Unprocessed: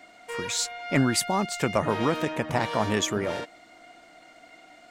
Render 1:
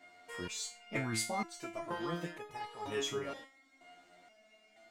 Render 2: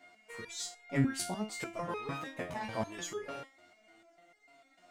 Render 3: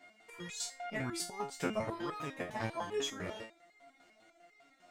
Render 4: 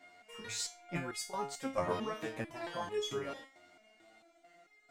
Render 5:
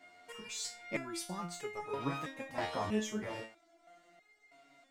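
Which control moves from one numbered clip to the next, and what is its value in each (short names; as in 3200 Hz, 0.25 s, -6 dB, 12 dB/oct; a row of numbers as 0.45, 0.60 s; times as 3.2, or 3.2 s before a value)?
stepped resonator, rate: 2.1, 6.7, 10, 4.5, 3.1 Hz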